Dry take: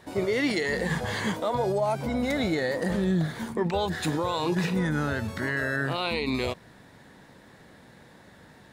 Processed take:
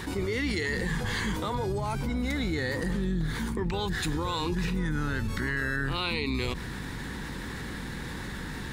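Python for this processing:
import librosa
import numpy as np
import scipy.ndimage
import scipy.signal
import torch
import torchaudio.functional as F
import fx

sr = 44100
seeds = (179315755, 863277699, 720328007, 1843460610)

y = fx.octave_divider(x, sr, octaves=2, level_db=-2.0)
y = fx.peak_eq(y, sr, hz=630.0, db=-15.0, octaves=0.58)
y = fx.env_flatten(y, sr, amount_pct=70)
y = y * 10.0 ** (-6.0 / 20.0)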